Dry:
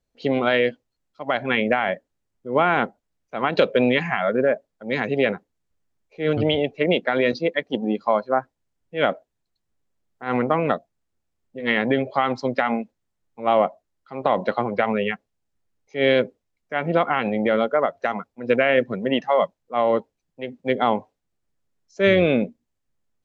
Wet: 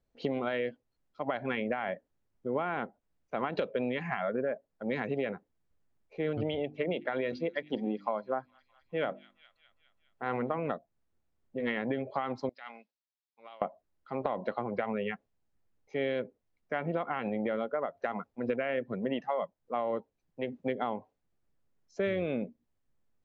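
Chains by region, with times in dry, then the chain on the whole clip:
6.55–10.58 notches 50/100/150/200/250/300/350 Hz + thin delay 0.206 s, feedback 59%, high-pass 4000 Hz, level -15 dB
12.49–13.62 negative-ratio compressor -23 dBFS + band-pass 4800 Hz, Q 2.3 + air absorption 110 m
whole clip: high shelf 3400 Hz -10.5 dB; compressor 5:1, threshold -30 dBFS

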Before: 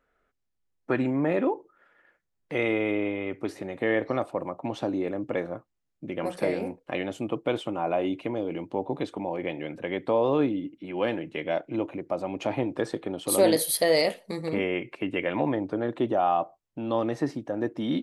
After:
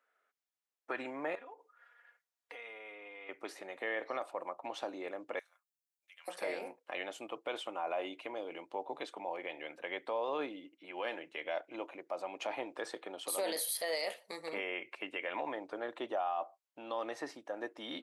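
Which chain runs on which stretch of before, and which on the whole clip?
1.35–3.29 bell 120 Hz -12 dB 2.6 oct + comb 4.2 ms, depth 82% + compressor 10:1, threshold -38 dBFS
5.39–6.28 HPF 1400 Hz + differentiator
whole clip: HPF 680 Hz 12 dB/oct; limiter -23 dBFS; gain -3.5 dB

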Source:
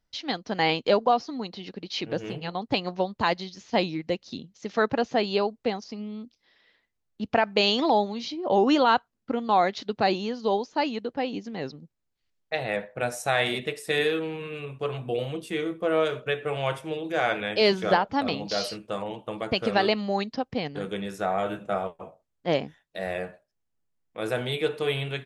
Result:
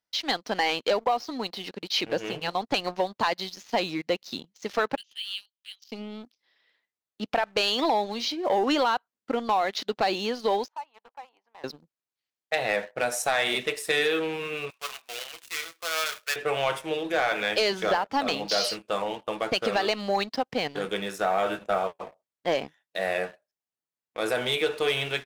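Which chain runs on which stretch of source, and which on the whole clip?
4.96–5.92 compressor 2:1, threshold -32 dBFS + ladder high-pass 2900 Hz, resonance 80%
10.68–11.64 ladder band-pass 1000 Hz, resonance 65% + compressor 2:1, threshold -46 dBFS
14.7–16.36 switching dead time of 0.13 ms + HPF 1400 Hz
whole clip: HPF 560 Hz 6 dB/oct; compressor 10:1, threshold -25 dBFS; sample leveller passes 2; gain -1 dB

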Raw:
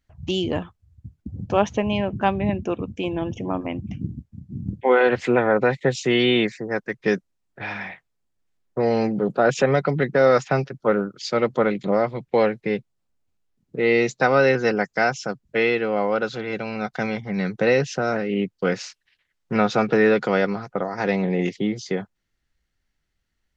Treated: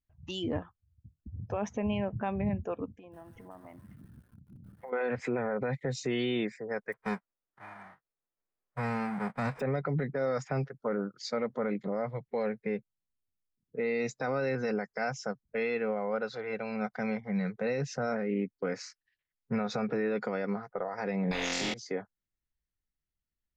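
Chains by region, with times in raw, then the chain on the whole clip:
2.92–4.93 high shelf 2100 Hz -5.5 dB + compressor 20:1, threshold -32 dBFS + lo-fi delay 0.146 s, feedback 55%, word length 7-bit, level -11 dB
6.92–9.59 spectral whitening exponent 0.1 + LPF 1500 Hz
21.31–21.74 flutter echo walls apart 3.9 m, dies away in 0.73 s + spectral compressor 4:1
whole clip: spectral noise reduction 12 dB; low shelf 430 Hz +6.5 dB; limiter -14.5 dBFS; gain -8.5 dB

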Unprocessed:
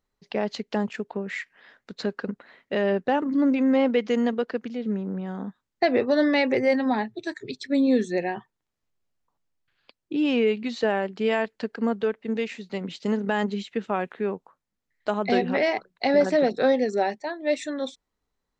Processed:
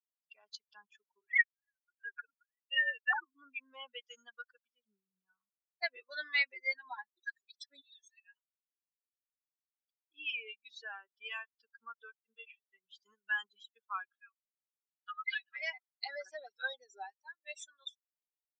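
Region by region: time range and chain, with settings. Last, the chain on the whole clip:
1.21–3.25 sine-wave speech + high shelf 2800 Hz +11.5 dB
7.81–8.37 band-pass 3700 Hz, Q 1.4 + comb 1.1 ms, depth 54%
12.35–12.86 sample leveller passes 1 + LPC vocoder at 8 kHz pitch kept + air absorption 130 m
14.07–15.56 comb 2.4 ms, depth 71% + hard clip -12 dBFS + Butterworth band-pass 2400 Hz, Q 0.77
whole clip: per-bin expansion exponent 3; HPF 1400 Hz 24 dB/oct; tilt -3.5 dB/oct; gain +5.5 dB

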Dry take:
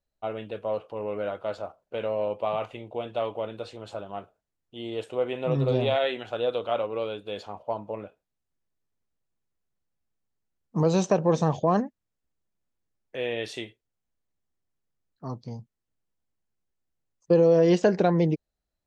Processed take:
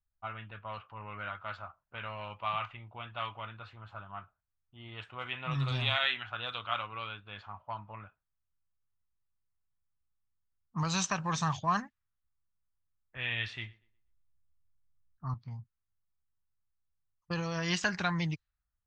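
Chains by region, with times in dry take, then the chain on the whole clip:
13.16–15.34 low shelf 140 Hz +10.5 dB + thinning echo 0.12 s, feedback 34%, high-pass 160 Hz, level -21 dB
whole clip: low-pass opened by the level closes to 890 Hz, open at -18 dBFS; EQ curve 100 Hz 0 dB, 480 Hz -25 dB, 1200 Hz +4 dB

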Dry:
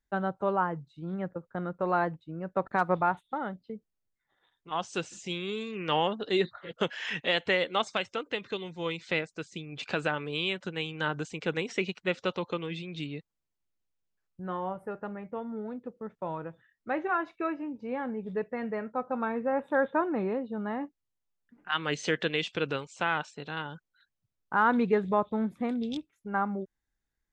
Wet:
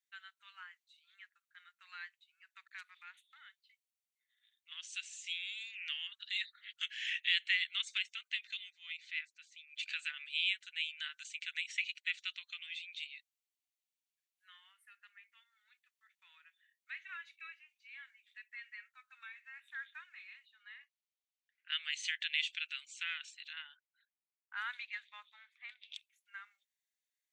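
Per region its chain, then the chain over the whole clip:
2.62–6.36 brick-wall FIR high-pass 380 Hz + compressor 1.5:1, threshold -33 dBFS
8.7–9.73 RIAA curve playback + transient shaper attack -8 dB, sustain 0 dB
20.51–21.72 LPF 5400 Hz + low shelf 420 Hz -10.5 dB
23.53–25.95 bell 720 Hz +14.5 dB 1.1 oct + low-pass opened by the level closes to 1800 Hz, open at -11 dBFS
whole clip: steep high-pass 2000 Hz 36 dB/oct; notch 5100 Hz, Q 11; dynamic EQ 5300 Hz, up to -4 dB, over -51 dBFS, Q 1.6

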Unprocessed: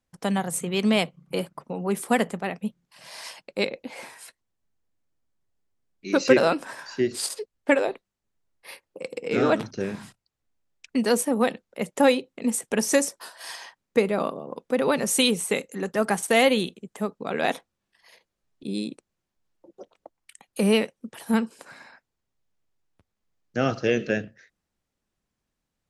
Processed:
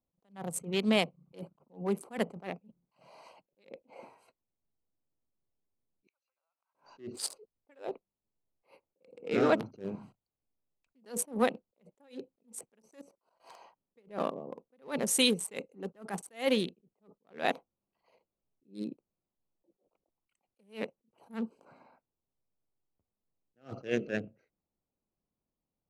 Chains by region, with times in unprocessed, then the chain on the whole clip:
6.07–6.75 compressor 20:1, threshold -31 dBFS + HPF 970 Hz 24 dB/oct + flipped gate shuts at -33 dBFS, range -33 dB
12.82–13.44 sample leveller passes 1 + level quantiser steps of 21 dB
whole clip: Wiener smoothing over 25 samples; low shelf 130 Hz -6.5 dB; attack slew limiter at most 220 dB/s; gain -3.5 dB

